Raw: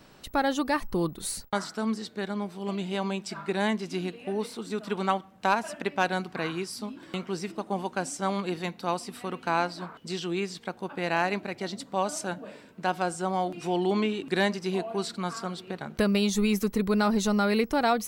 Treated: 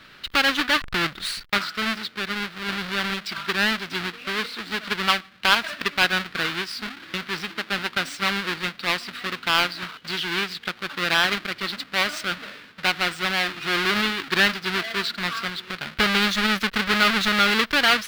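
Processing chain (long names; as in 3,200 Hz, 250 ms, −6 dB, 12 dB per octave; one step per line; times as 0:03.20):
each half-wave held at its own peak
flat-topped bell 2,400 Hz +15.5 dB 2.3 octaves
level −6.5 dB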